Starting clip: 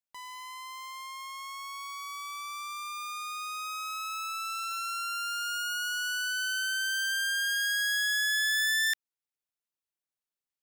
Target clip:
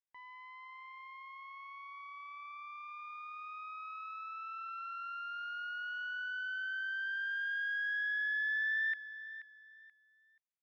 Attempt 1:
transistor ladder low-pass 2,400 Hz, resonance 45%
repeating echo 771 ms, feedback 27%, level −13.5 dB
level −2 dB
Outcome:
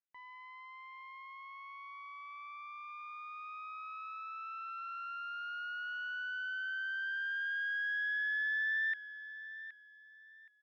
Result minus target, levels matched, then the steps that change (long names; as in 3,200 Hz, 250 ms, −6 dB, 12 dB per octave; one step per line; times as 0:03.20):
echo 290 ms late
change: repeating echo 481 ms, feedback 27%, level −13.5 dB